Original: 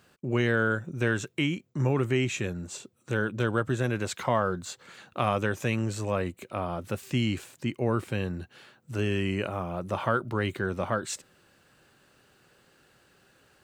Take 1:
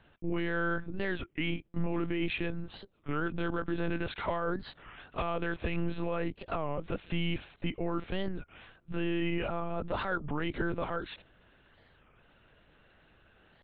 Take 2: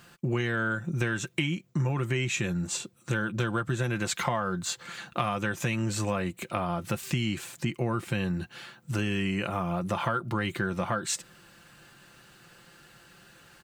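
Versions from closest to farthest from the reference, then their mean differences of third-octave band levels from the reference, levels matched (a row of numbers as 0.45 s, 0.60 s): 2, 1; 4.5 dB, 8.5 dB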